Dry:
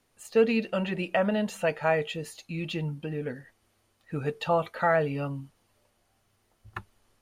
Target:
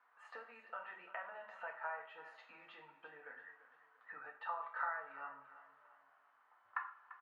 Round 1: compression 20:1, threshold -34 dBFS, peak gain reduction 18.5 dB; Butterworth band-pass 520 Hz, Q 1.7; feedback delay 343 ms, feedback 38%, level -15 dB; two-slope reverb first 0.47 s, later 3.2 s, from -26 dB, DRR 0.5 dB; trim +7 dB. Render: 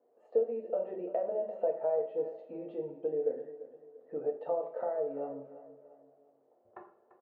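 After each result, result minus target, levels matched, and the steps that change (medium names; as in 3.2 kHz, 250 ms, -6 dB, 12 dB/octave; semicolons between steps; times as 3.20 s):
1 kHz band -11.5 dB; compression: peak gain reduction -6 dB
change: Butterworth band-pass 1.2 kHz, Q 1.7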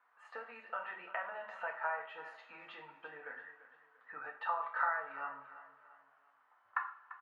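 compression: peak gain reduction -6 dB
change: compression 20:1, threshold -40.5 dBFS, peak gain reduction 24.5 dB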